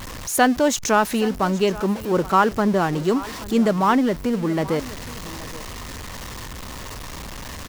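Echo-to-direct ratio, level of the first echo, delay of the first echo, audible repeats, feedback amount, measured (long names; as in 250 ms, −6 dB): −18.0 dB, −18.0 dB, 824 ms, 1, repeats not evenly spaced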